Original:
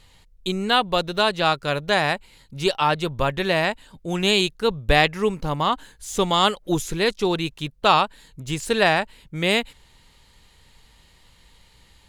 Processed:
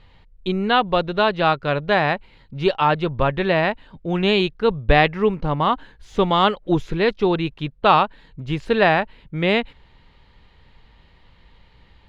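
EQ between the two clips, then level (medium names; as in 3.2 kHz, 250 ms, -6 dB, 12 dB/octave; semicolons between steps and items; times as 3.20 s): distance through air 320 m; +4.0 dB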